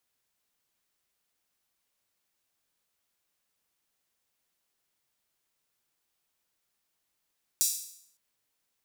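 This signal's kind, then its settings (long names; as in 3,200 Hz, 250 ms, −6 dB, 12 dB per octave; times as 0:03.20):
open synth hi-hat length 0.56 s, high-pass 6,000 Hz, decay 0.67 s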